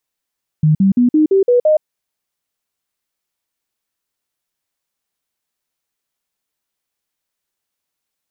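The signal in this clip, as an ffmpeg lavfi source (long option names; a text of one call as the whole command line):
ffmpeg -f lavfi -i "aevalsrc='0.398*clip(min(mod(t,0.17),0.12-mod(t,0.17))/0.005,0,1)*sin(2*PI*154*pow(2,floor(t/0.17)/3)*mod(t,0.17))':duration=1.19:sample_rate=44100" out.wav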